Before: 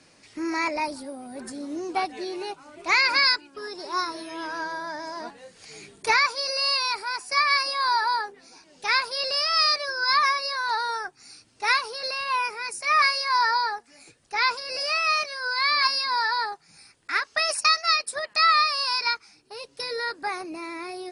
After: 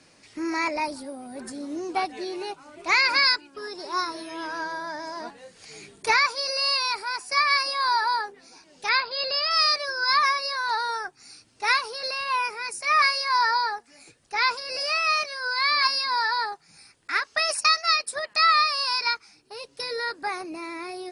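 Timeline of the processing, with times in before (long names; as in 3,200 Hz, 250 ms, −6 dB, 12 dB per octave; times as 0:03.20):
0:08.89–0:09.51: linear-phase brick-wall low-pass 5,200 Hz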